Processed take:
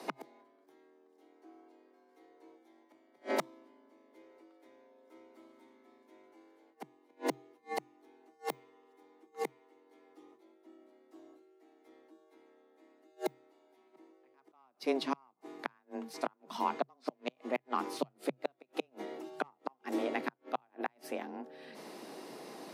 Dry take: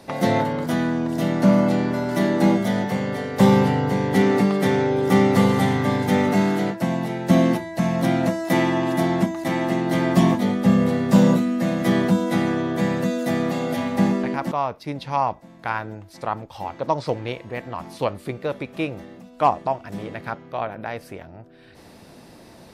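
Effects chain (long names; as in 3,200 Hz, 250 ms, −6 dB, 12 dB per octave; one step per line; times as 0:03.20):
stylus tracing distortion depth 0.032 ms
gate with flip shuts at −17 dBFS, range −40 dB
frequency shifter +130 Hz
level −2 dB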